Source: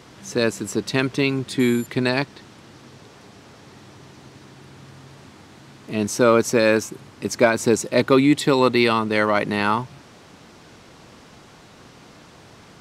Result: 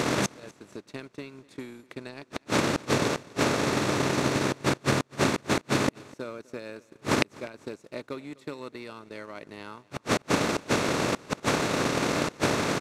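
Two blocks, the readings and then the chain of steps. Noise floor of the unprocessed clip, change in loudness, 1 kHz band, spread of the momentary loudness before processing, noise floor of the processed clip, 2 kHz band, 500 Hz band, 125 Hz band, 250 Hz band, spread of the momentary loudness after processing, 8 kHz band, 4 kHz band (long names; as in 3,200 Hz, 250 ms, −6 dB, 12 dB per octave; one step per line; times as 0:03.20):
−48 dBFS, −7.0 dB, −4.0 dB, 11 LU, −62 dBFS, −4.5 dB, −8.0 dB, −2.5 dB, −7.0 dB, 17 LU, −2.0 dB, −2.5 dB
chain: compressor on every frequency bin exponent 0.6
gate with flip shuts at −19 dBFS, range −31 dB
transient designer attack +8 dB, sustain −11 dB
repeating echo 250 ms, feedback 34%, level −23 dB
level +4 dB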